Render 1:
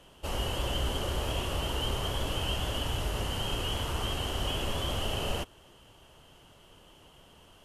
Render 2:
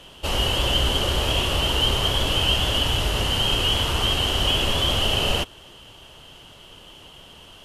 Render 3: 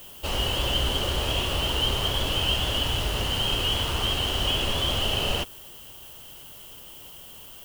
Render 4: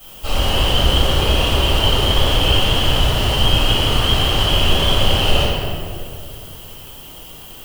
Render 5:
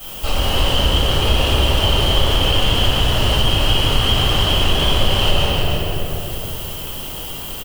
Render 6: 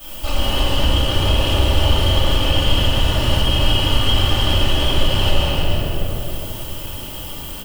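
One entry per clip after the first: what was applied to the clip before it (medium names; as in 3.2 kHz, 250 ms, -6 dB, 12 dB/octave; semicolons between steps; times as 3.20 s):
peaking EQ 3.5 kHz +7 dB 1.3 oct; trim +8 dB
added noise violet -42 dBFS; trim -4 dB
reverberation RT60 2.3 s, pre-delay 3 ms, DRR -13.5 dB; trim -6 dB
compression 2:1, threshold -27 dBFS, peak gain reduction 10.5 dB; delay 308 ms -5.5 dB; trim +7 dB
simulated room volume 3900 m³, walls furnished, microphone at 2.5 m; trim -4 dB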